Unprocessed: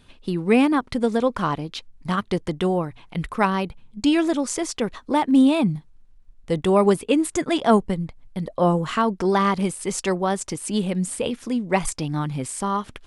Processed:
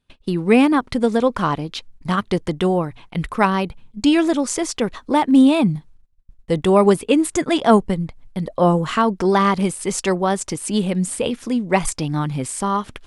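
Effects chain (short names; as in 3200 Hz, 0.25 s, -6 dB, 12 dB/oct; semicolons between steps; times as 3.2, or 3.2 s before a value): gate -45 dBFS, range -23 dB; gain +3.5 dB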